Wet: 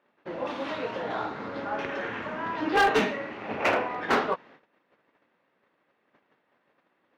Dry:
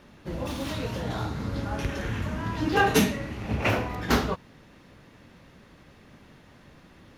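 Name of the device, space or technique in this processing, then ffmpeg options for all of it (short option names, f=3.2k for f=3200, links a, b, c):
walkie-talkie: -af "highpass=420,lowpass=2.3k,asoftclip=type=hard:threshold=-21.5dB,agate=range=-18dB:threshold=-55dB:ratio=16:detection=peak,volume=4.5dB"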